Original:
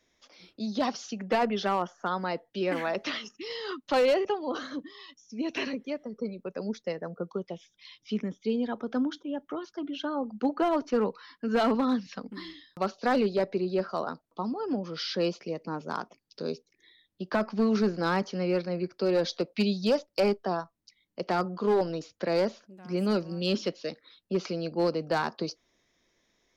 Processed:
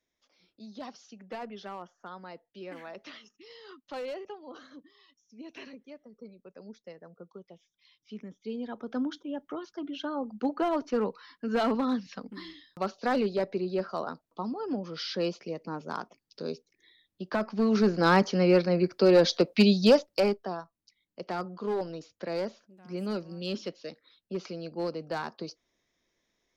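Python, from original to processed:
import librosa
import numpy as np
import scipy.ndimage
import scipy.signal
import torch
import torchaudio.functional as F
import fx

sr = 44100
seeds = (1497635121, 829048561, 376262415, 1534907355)

y = fx.gain(x, sr, db=fx.line((7.97, -13.5), (9.09, -2.0), (17.52, -2.0), (18.13, 6.0), (19.9, 6.0), (20.55, -6.0)))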